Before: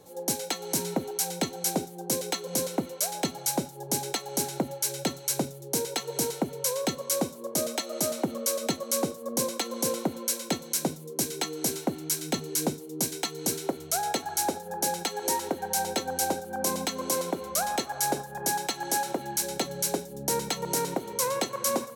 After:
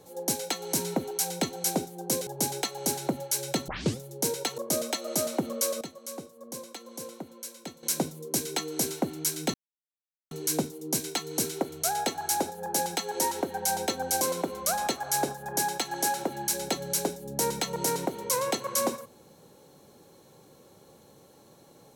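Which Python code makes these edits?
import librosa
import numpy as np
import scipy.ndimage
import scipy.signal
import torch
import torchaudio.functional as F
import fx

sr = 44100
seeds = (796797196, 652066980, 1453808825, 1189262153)

y = fx.edit(x, sr, fx.cut(start_s=2.27, length_s=1.51),
    fx.tape_start(start_s=5.19, length_s=0.3),
    fx.cut(start_s=6.09, length_s=1.34),
    fx.clip_gain(start_s=8.66, length_s=2.02, db=-12.0),
    fx.insert_silence(at_s=12.39, length_s=0.77),
    fx.cut(start_s=16.29, length_s=0.81), tone=tone)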